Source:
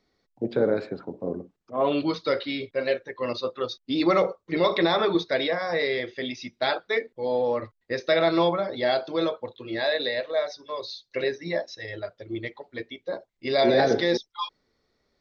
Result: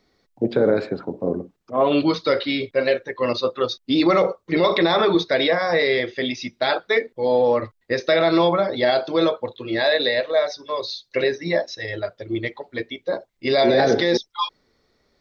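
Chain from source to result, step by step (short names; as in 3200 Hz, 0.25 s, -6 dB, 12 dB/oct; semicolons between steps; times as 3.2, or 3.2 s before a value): limiter -15.5 dBFS, peak gain reduction 4.5 dB; gain +7 dB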